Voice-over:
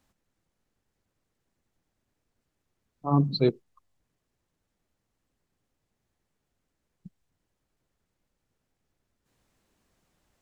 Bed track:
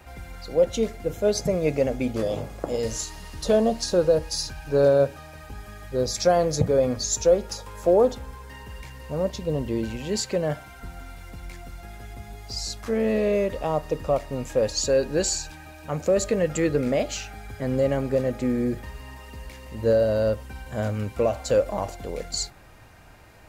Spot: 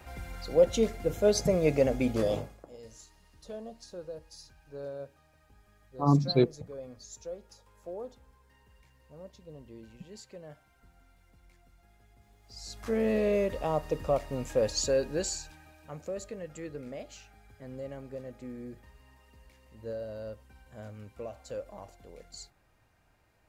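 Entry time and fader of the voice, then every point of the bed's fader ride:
2.95 s, -0.5 dB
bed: 2.35 s -2 dB
2.66 s -22 dB
12.39 s -22 dB
12.88 s -4.5 dB
14.78 s -4.5 dB
16.39 s -18 dB

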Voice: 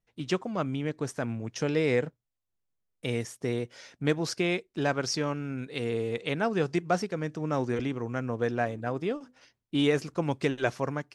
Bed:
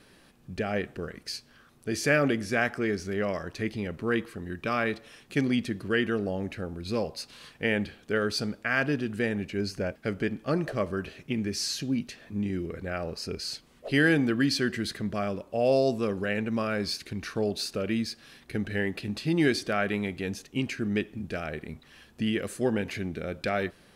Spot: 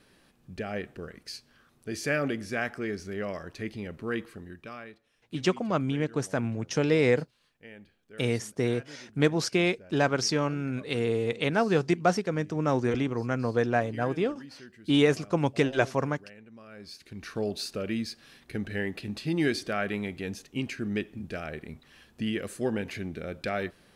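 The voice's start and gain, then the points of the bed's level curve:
5.15 s, +3.0 dB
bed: 4.36 s -4.5 dB
5.03 s -21.5 dB
16.6 s -21.5 dB
17.34 s -2.5 dB

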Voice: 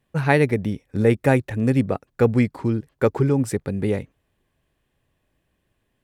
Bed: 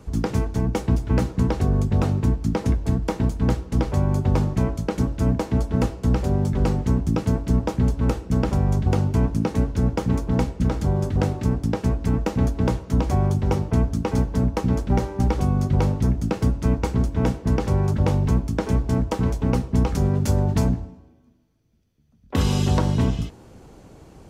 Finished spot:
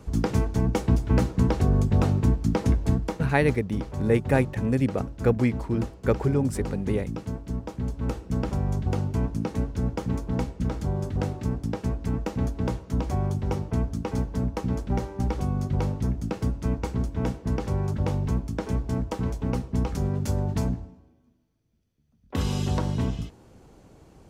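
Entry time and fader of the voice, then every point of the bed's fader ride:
3.05 s, -4.5 dB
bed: 2.92 s -1 dB
3.35 s -11 dB
7.73 s -11 dB
8.19 s -6 dB

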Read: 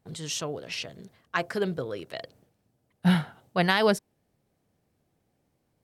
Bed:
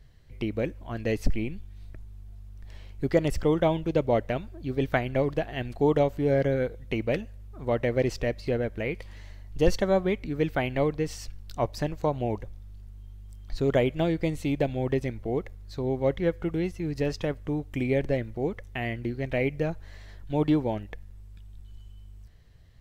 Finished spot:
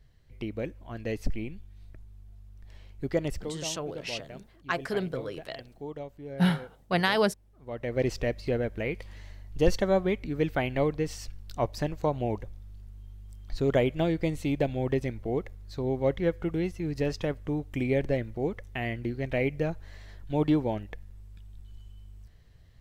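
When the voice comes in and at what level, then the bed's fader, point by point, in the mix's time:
3.35 s, -2.0 dB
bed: 3.34 s -5 dB
3.55 s -16.5 dB
7.57 s -16.5 dB
8.04 s -1 dB

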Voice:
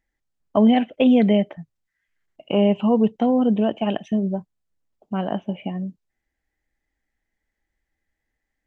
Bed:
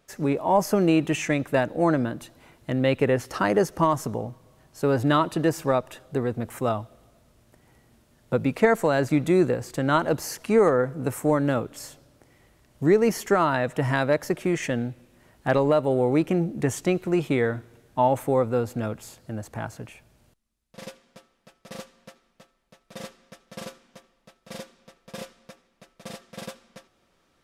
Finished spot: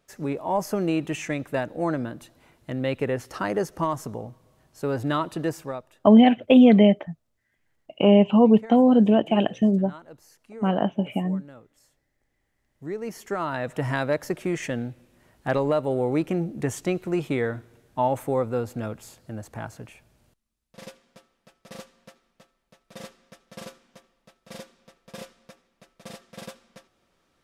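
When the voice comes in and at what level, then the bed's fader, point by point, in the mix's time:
5.50 s, +2.0 dB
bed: 5.51 s -4.5 dB
6.15 s -22.5 dB
12.28 s -22.5 dB
13.76 s -2.5 dB

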